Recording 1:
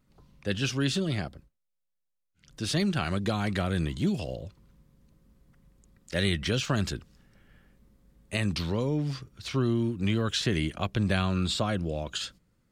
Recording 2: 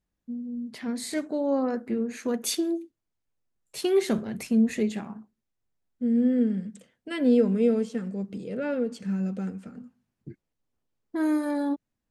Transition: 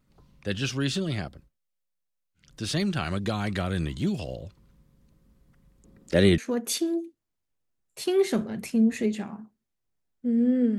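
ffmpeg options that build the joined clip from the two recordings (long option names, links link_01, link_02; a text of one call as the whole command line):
ffmpeg -i cue0.wav -i cue1.wav -filter_complex "[0:a]asettb=1/sr,asplit=3[link_01][link_02][link_03];[link_01]atrim=end=5.844[link_04];[link_02]atrim=start=5.84:end=6.38,asetpts=PTS-STARTPTS,afade=type=in:duration=0.004:curve=qsin,afade=type=out:start_time=0.536:duration=0.004:curve=qsin,equalizer=frequency=350:width_type=o:width=2.7:gain=12[link_05];[link_03]atrim=start=6.376[link_06];[link_04][link_05]acrossfade=duration=0.004:curve1=hsin:curve2=qsin[link_07];[link_07][link_06]acrossfade=duration=0.004:curve1=qsin:curve2=hsin,apad=whole_dur=10.78,atrim=end=10.78,atrim=end=6.382[link_08];[1:a]atrim=start=2.148:end=6.55[link_09];[link_08][link_09]acrossfade=duration=0.004:curve1=hsin:curve2=hsin" out.wav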